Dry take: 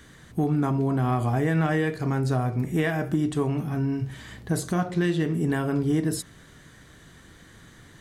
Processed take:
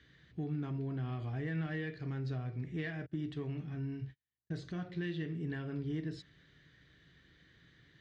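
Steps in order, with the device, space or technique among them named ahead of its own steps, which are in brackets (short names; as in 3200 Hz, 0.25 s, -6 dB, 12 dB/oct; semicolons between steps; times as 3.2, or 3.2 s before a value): 3.06–4.59 gate -31 dBFS, range -44 dB; overdrive pedal into a guitar cabinet (overdrive pedal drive 9 dB, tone 7000 Hz, clips at -13.5 dBFS; speaker cabinet 89–4300 Hz, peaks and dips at 96 Hz -10 dB, 220 Hz -8 dB, 1800 Hz +4 dB); passive tone stack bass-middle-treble 10-0-1; gain +8 dB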